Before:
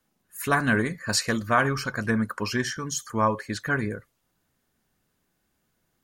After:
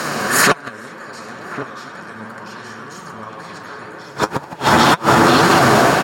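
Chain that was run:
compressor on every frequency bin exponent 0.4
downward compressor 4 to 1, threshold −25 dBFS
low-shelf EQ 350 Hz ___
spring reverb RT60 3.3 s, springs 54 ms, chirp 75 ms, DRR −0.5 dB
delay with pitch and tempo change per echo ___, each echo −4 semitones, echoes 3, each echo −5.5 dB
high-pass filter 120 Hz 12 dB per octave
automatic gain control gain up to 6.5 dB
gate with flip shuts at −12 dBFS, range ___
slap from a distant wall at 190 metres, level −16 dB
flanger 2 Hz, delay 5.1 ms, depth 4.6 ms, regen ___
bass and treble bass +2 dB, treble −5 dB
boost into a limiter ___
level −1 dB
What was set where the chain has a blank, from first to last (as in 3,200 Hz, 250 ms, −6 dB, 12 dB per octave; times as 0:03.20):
−8 dB, 331 ms, −31 dB, +45%, +22 dB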